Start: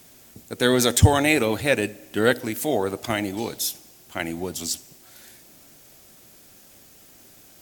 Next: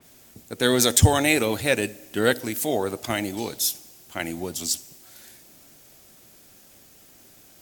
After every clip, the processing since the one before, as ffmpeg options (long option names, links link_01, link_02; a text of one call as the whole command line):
ffmpeg -i in.wav -af "adynamicequalizer=threshold=0.0178:dfrequency=3500:dqfactor=0.7:tfrequency=3500:tqfactor=0.7:attack=5:release=100:ratio=0.375:range=2.5:mode=boostabove:tftype=highshelf,volume=-1.5dB" out.wav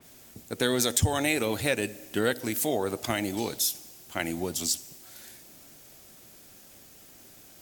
ffmpeg -i in.wav -af "acompressor=threshold=-24dB:ratio=2.5" out.wav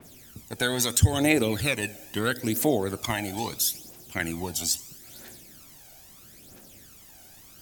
ffmpeg -i in.wav -af "aphaser=in_gain=1:out_gain=1:delay=1.4:decay=0.59:speed=0.76:type=triangular" out.wav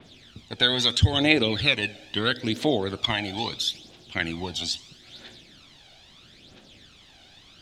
ffmpeg -i in.wav -af "lowpass=frequency=3600:width_type=q:width=3.6" out.wav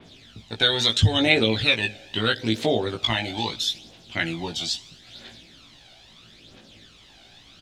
ffmpeg -i in.wav -filter_complex "[0:a]asplit=2[link_01][link_02];[link_02]adelay=18,volume=-3.5dB[link_03];[link_01][link_03]amix=inputs=2:normalize=0" out.wav